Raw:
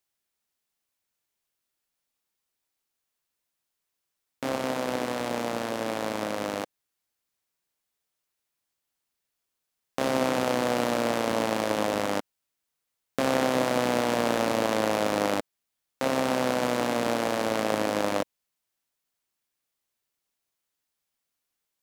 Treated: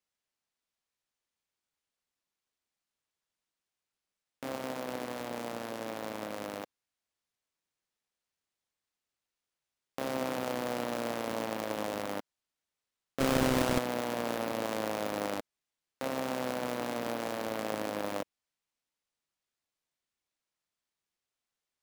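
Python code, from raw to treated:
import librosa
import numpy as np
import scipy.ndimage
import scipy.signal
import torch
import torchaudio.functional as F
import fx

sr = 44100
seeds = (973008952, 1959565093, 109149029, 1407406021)

y = fx.halfwave_hold(x, sr, at=(13.2, 13.79))
y = fx.sample_hold(y, sr, seeds[0], rate_hz=16000.0, jitter_pct=0)
y = y * librosa.db_to_amplitude(-8.5)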